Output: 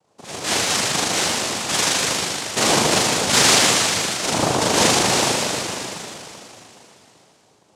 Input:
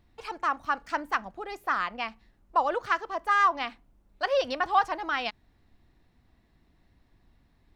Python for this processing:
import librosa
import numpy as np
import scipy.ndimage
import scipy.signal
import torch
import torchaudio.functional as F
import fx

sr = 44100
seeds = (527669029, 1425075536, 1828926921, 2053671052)

y = fx.rev_spring(x, sr, rt60_s=3.2, pass_ms=(38,), chirp_ms=60, drr_db=-9.5)
y = fx.noise_vocoder(y, sr, seeds[0], bands=2)